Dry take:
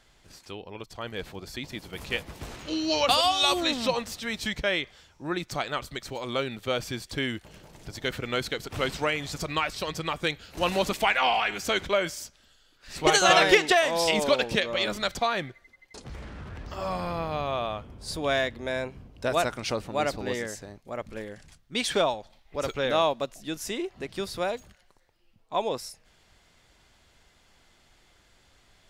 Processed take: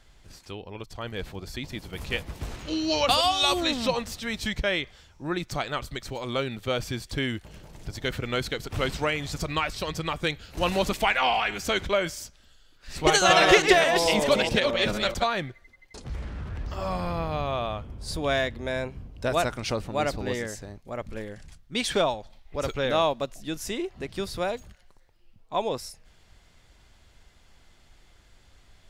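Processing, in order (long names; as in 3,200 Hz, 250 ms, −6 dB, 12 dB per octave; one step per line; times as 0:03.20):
0:13.19–0:15.24: delay that plays each chunk backwards 217 ms, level −4.5 dB
low-shelf EQ 110 Hz +10 dB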